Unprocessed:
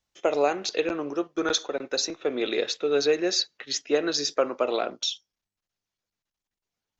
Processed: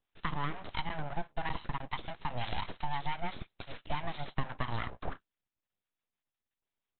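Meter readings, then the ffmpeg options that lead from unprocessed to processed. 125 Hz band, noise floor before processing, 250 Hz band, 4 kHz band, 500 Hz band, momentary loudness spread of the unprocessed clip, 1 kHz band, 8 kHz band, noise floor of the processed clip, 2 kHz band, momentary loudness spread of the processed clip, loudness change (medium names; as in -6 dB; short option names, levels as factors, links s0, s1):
+9.5 dB, under -85 dBFS, -14.0 dB, -16.5 dB, -21.5 dB, 6 LU, -3.5 dB, no reading, under -85 dBFS, -7.0 dB, 8 LU, -13.0 dB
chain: -filter_complex "[0:a]aresample=8000,aeval=exprs='abs(val(0))':c=same,aresample=44100,acompressor=threshold=0.0355:ratio=3,acrossover=split=740[s0][s1];[s0]aeval=exprs='val(0)*(1-0.5/2+0.5/2*cos(2*PI*5.9*n/s))':c=same[s2];[s1]aeval=exprs='val(0)*(1-0.5/2-0.5/2*cos(2*PI*5.9*n/s))':c=same[s3];[s2][s3]amix=inputs=2:normalize=0,volume=1.12"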